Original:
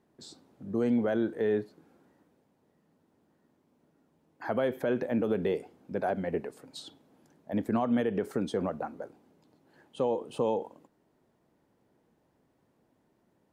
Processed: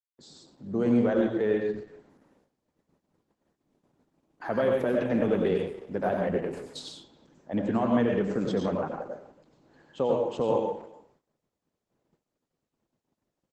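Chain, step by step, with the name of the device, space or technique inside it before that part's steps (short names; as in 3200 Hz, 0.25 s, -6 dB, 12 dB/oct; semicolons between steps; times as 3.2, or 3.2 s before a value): speakerphone in a meeting room (reverb RT60 0.40 s, pre-delay 87 ms, DRR 1 dB; speakerphone echo 0.28 s, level -20 dB; AGC gain up to 4.5 dB; gate -60 dBFS, range -36 dB; gain -3 dB; Opus 12 kbps 48000 Hz)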